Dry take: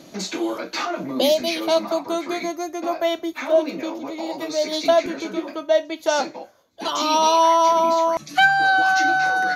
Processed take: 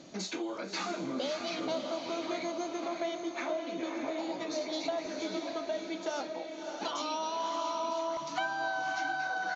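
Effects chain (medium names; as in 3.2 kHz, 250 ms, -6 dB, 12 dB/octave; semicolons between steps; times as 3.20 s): compression, threshold -26 dBFS, peak gain reduction 14 dB; on a send: echo that smears into a reverb 605 ms, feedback 45%, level -4.5 dB; on the sum: resampled via 16 kHz; trim -7 dB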